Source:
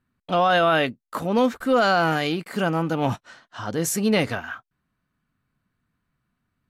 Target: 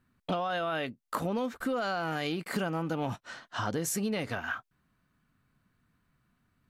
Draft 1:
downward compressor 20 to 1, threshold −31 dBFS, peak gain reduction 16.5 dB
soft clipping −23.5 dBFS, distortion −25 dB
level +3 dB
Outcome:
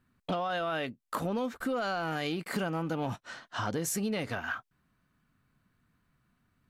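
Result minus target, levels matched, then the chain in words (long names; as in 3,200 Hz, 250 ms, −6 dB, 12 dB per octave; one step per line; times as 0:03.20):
soft clipping: distortion +14 dB
downward compressor 20 to 1, threshold −31 dBFS, peak gain reduction 16.5 dB
soft clipping −15.5 dBFS, distortion −39 dB
level +3 dB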